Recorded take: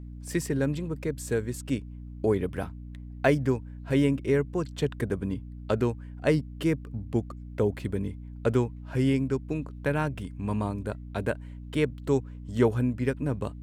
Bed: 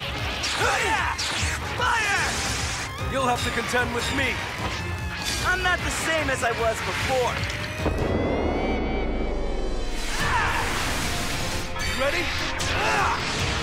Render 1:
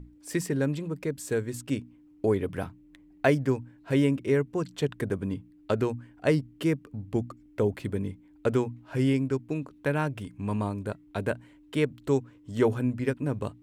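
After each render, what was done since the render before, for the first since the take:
mains-hum notches 60/120/180/240 Hz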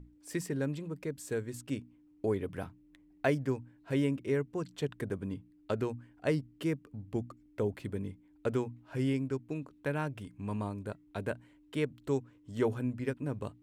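level −6.5 dB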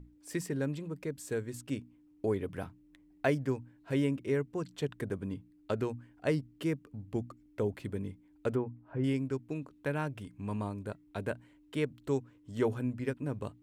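0:08.55–0:09.04: low-pass filter 1,300 Hz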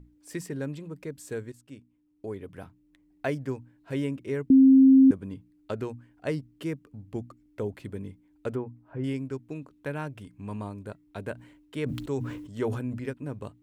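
0:01.52–0:03.48: fade in, from −12.5 dB
0:04.50–0:05.11: beep over 266 Hz −12 dBFS
0:11.33–0:13.09: level that may fall only so fast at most 51 dB per second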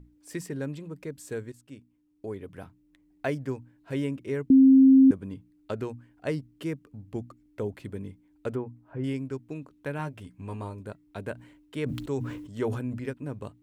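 0:09.98–0:10.80: double-tracking delay 12 ms −6.5 dB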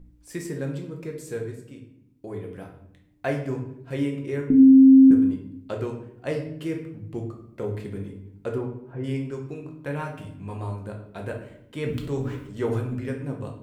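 rectangular room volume 150 cubic metres, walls mixed, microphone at 0.87 metres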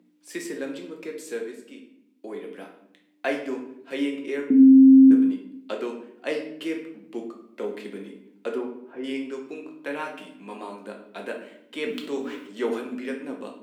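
Butterworth high-pass 210 Hz 48 dB per octave
parametric band 3,100 Hz +7 dB 1.5 octaves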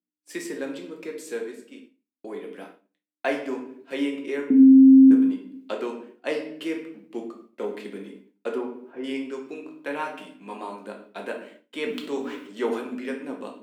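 dynamic equaliser 910 Hz, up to +4 dB, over −45 dBFS, Q 2.1
downward expander −43 dBFS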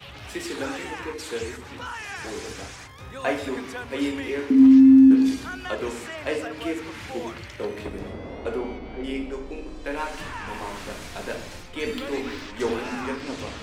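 mix in bed −12.5 dB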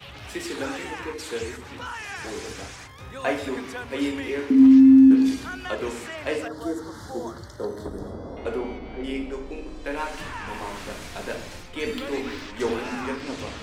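0:06.48–0:08.37: Butterworth band-reject 2,500 Hz, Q 1

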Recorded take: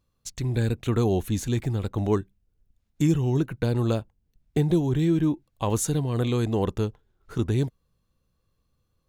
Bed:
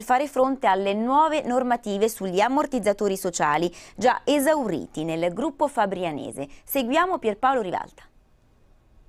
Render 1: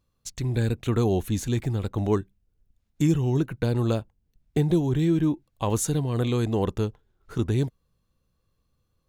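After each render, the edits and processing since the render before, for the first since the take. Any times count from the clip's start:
no processing that can be heard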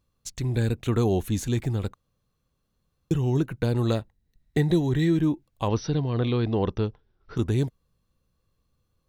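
0:01.94–0:03.11: fill with room tone
0:03.83–0:05.17: hollow resonant body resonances 1,900/3,900 Hz, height 13 dB, ringing for 20 ms
0:05.68–0:07.37: linear-phase brick-wall low-pass 6,000 Hz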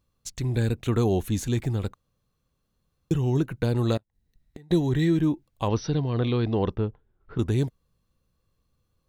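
0:03.97–0:04.71: gate with flip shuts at −27 dBFS, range −28 dB
0:06.75–0:07.39: high-frequency loss of the air 410 metres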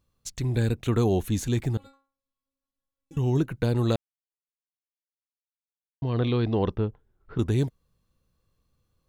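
0:01.77–0:03.17: stiff-string resonator 270 Hz, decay 0.38 s, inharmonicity 0.002
0:03.96–0:06.02: silence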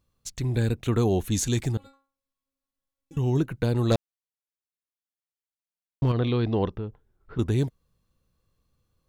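0:01.31–0:01.72: parametric band 6,700 Hz +9 dB 2 octaves
0:03.91–0:06.12: leveller curve on the samples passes 2
0:06.67–0:07.38: downward compressor 2 to 1, threshold −32 dBFS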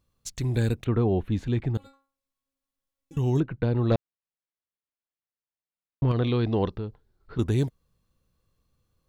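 0:00.84–0:01.75: high-frequency loss of the air 460 metres
0:03.40–0:06.11: high-frequency loss of the air 290 metres
0:06.65–0:07.39: parametric band 4,300 Hz +10 dB 0.42 octaves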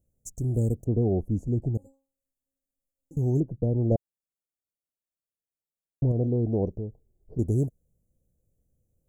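elliptic band-stop filter 660–6,900 Hz, stop band 40 dB
parametric band 2,200 Hz −4 dB 2 octaves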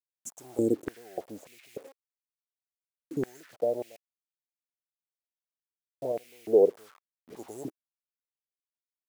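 bit reduction 9 bits
high-pass on a step sequencer 3.4 Hz 230–2,300 Hz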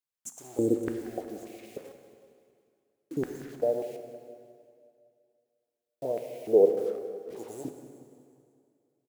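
repeating echo 182 ms, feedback 55%, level −15 dB
dense smooth reverb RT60 2.3 s, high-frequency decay 0.85×, DRR 6.5 dB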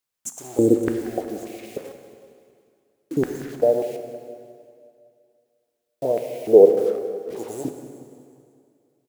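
level +9 dB
brickwall limiter −1 dBFS, peak gain reduction 1 dB

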